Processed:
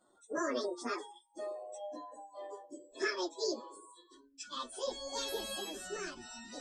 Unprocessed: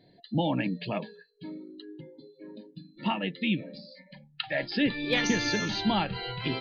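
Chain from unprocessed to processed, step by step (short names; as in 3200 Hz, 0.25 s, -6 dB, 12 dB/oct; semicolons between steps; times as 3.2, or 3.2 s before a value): pitch shift by moving bins +11.5 st; Doppler pass-by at 2.02, 13 m/s, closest 12 m; gain +2.5 dB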